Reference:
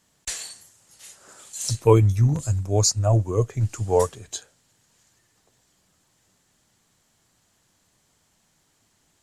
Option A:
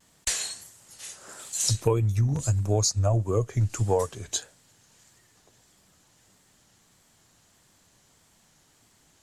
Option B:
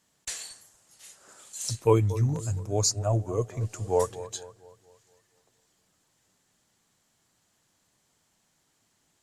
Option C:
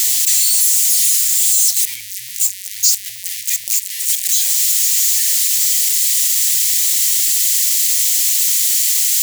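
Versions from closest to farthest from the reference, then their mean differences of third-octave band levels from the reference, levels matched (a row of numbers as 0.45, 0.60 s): B, A, C; 2.5, 4.5, 20.0 dB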